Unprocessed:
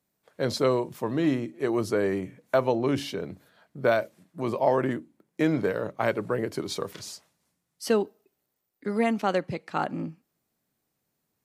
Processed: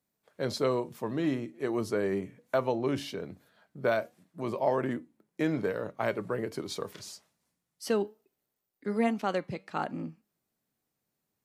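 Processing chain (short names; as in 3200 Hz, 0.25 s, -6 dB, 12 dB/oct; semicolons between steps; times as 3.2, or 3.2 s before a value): flange 1.2 Hz, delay 3.9 ms, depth 1.4 ms, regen +88%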